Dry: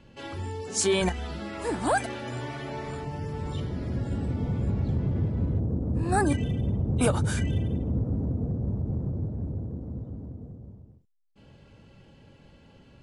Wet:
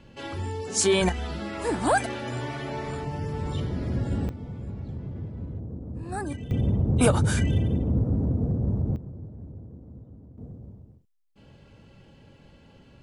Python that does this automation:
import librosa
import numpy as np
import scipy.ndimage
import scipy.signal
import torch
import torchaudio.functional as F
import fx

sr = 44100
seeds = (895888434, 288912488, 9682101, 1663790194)

y = fx.gain(x, sr, db=fx.steps((0.0, 2.5), (4.29, -8.5), (6.51, 3.5), (8.96, -9.0), (10.38, 1.0)))